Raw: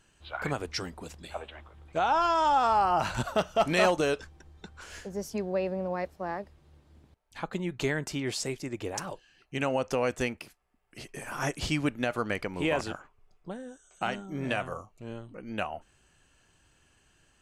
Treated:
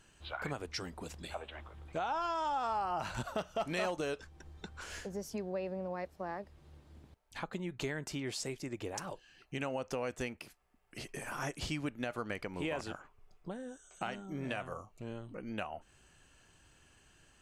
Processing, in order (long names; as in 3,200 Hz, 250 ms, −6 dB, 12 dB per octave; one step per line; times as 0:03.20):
downward compressor 2 to 1, threshold −43 dBFS, peak gain reduction 13 dB
level +1 dB